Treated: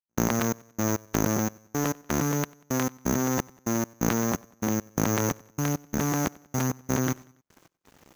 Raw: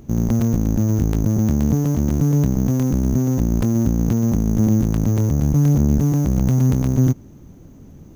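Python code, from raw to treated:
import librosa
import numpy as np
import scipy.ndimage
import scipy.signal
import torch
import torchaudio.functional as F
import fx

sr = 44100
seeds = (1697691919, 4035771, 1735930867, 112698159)

p1 = fx.highpass(x, sr, hz=870.0, slope=6)
p2 = fx.peak_eq(p1, sr, hz=1500.0, db=8.5, octaves=1.9)
p3 = fx.over_compress(p2, sr, threshold_db=-32.0, ratio=-0.5)
p4 = p2 + (p3 * librosa.db_to_amplitude(2.0))
p5 = np.sign(p4) * np.maximum(np.abs(p4) - 10.0 ** (-42.5 / 20.0), 0.0)
p6 = fx.step_gate(p5, sr, bpm=172, pattern='..xxxx...xx', floor_db=-60.0, edge_ms=4.5)
y = p6 + fx.echo_feedback(p6, sr, ms=94, feedback_pct=48, wet_db=-24.0, dry=0)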